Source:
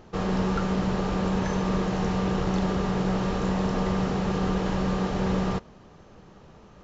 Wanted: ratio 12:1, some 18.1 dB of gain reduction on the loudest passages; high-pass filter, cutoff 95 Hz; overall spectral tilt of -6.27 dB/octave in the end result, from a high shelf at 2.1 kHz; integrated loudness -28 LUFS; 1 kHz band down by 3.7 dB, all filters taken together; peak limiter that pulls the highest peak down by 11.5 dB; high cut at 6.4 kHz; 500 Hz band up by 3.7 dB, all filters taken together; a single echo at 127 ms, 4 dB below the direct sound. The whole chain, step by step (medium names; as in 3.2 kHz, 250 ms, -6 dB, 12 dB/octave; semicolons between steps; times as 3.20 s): high-pass 95 Hz; low-pass 6.4 kHz; peaking EQ 500 Hz +6 dB; peaking EQ 1 kHz -8.5 dB; treble shelf 2.1 kHz +5.5 dB; compression 12:1, threshold -40 dBFS; peak limiter -41 dBFS; delay 127 ms -4 dB; trim +19 dB